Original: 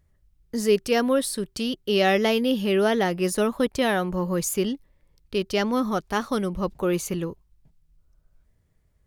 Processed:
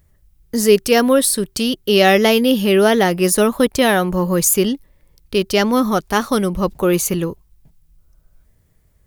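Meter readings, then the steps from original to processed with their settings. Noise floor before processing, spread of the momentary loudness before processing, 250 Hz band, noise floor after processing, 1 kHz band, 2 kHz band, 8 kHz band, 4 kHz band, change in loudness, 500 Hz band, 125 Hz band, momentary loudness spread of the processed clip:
−66 dBFS, 8 LU, +8.0 dB, −58 dBFS, +8.0 dB, +8.5 dB, +12.5 dB, +9.0 dB, +8.5 dB, +8.0 dB, +8.0 dB, 8 LU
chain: high-shelf EQ 9,400 Hz +11 dB
level +8 dB

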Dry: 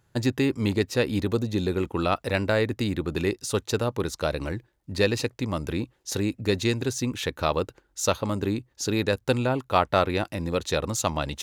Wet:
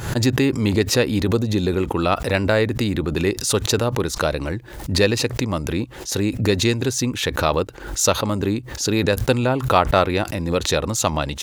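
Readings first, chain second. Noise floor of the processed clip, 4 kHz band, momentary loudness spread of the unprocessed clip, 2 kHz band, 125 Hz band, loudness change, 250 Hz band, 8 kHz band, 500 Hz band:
−36 dBFS, +7.5 dB, 6 LU, +6.0 dB, +6.5 dB, +6.0 dB, +5.5 dB, +9.0 dB, +5.5 dB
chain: background raised ahead of every attack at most 79 dB per second
level +5 dB

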